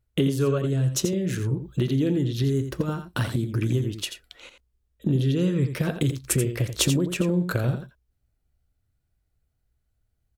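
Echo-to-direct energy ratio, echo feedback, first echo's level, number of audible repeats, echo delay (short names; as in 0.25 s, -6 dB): -9.0 dB, no steady repeat, -9.0 dB, 1, 85 ms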